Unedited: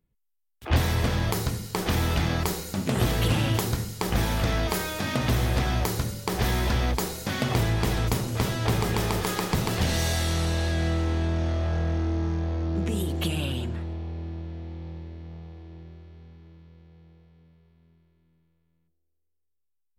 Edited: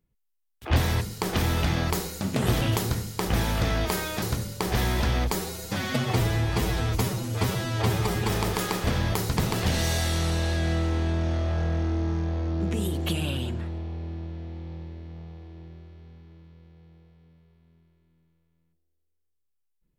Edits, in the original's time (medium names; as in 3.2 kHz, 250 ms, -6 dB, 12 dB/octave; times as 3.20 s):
1.01–1.54 s: move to 9.52 s
3.14–3.43 s: delete
5.04–5.89 s: delete
7.02–9.00 s: stretch 1.5×